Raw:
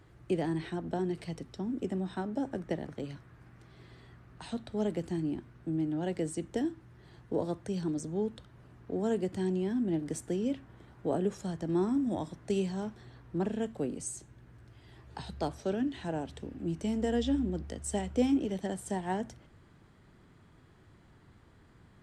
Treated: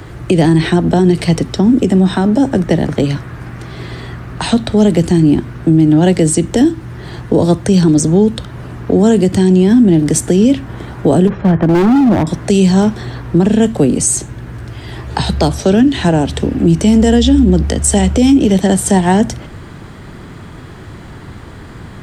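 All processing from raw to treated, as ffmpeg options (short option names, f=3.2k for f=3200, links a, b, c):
-filter_complex "[0:a]asettb=1/sr,asplit=3[a][b][c];[a]atrim=end=11.274[d];[b]atrim=start=11.27:end=12.27,asetpts=PTS-STARTPTS,afade=t=in:d=0.004:c=qsin,afade=t=out:st=0.996:d=0.004:c=qsin,lowpass=f=2.3k:w=0.5412,lowpass=f=2.3k:w=1.3066,volume=32dB,asoftclip=hard,volume=-32dB[e];[c]atrim=start=12.266[f];[d][e]acrossfade=d=0.004:c1=hsin:c2=qsin[g];[g][f]acrossfade=d=0.004:c1=qsin:c2=hsin,acrossover=split=240|3000[h][i][j];[i]acompressor=threshold=-43dB:ratio=2[k];[h][k][j]amix=inputs=3:normalize=0,alimiter=level_in=28.5dB:limit=-1dB:release=50:level=0:latency=1,volume=-1dB"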